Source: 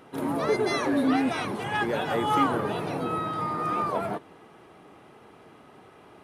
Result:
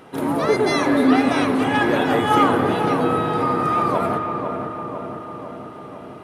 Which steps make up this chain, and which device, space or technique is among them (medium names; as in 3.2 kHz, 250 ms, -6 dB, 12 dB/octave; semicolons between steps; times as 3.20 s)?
dub delay into a spring reverb (filtered feedback delay 500 ms, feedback 68%, low-pass 1.8 kHz, level -6.5 dB; spring tank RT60 3.1 s, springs 31 ms, chirp 30 ms, DRR 7.5 dB); trim +6.5 dB